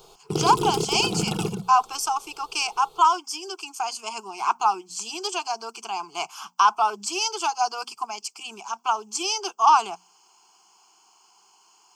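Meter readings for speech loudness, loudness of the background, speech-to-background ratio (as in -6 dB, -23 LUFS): -24.5 LUFS, -28.0 LUFS, 3.5 dB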